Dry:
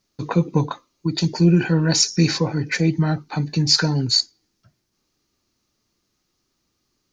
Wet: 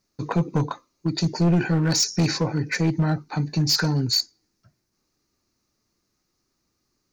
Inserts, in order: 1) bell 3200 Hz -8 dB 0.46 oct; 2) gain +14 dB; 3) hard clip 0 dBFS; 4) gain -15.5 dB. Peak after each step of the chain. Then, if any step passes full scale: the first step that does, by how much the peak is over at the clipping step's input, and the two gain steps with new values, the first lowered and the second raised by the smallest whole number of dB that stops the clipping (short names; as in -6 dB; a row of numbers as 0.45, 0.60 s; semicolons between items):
-4.0, +10.0, 0.0, -15.5 dBFS; step 2, 10.0 dB; step 2 +4 dB, step 4 -5.5 dB